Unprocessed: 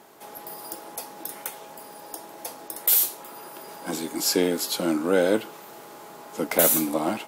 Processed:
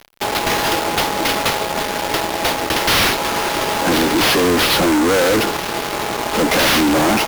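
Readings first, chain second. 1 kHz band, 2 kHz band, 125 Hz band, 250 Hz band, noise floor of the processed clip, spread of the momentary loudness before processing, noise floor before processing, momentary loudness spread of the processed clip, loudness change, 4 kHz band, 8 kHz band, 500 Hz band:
+17.0 dB, +17.5 dB, +14.0 dB, +10.5 dB, -24 dBFS, 23 LU, -44 dBFS, 7 LU, +7.0 dB, +15.5 dB, +5.5 dB, +9.0 dB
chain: sample-rate reducer 7.9 kHz, jitter 20%; fuzz box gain 44 dB, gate -44 dBFS

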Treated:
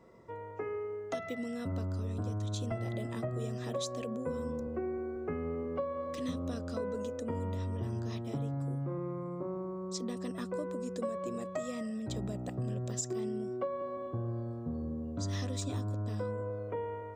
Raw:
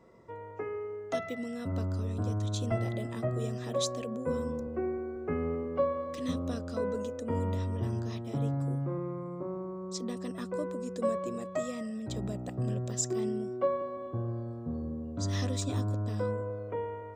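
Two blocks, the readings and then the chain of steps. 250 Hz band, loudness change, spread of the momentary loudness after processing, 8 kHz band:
-2.5 dB, -3.0 dB, 3 LU, -4.0 dB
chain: compression, threshold -32 dBFS, peak gain reduction 9 dB

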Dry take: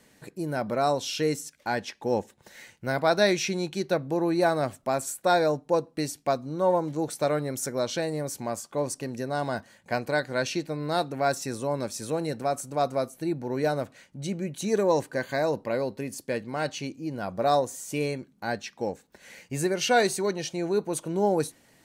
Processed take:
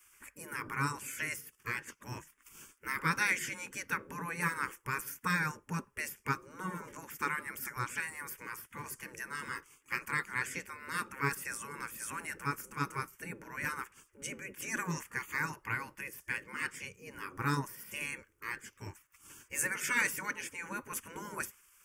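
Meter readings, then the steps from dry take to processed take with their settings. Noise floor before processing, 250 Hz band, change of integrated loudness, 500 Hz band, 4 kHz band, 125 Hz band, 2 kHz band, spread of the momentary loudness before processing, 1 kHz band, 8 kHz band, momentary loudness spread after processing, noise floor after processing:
-62 dBFS, -14.0 dB, -9.0 dB, -23.5 dB, -12.5 dB, -8.0 dB, 0.0 dB, 9 LU, -9.5 dB, -5.5 dB, 12 LU, -69 dBFS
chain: spectral gate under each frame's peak -15 dB weak; static phaser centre 1.7 kHz, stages 4; trim +5.5 dB

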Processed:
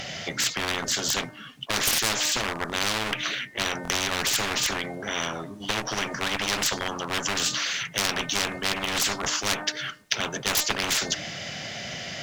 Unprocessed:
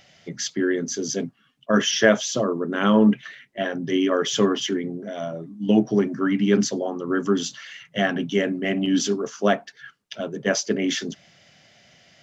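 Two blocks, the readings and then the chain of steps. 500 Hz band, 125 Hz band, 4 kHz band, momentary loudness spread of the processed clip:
-11.0 dB, -7.0 dB, +4.5 dB, 8 LU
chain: de-hum 303.7 Hz, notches 7; one-sided clip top -20 dBFS; buffer glitch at 3.83 s, samples 1024, times 2; spectrum-flattening compressor 10:1

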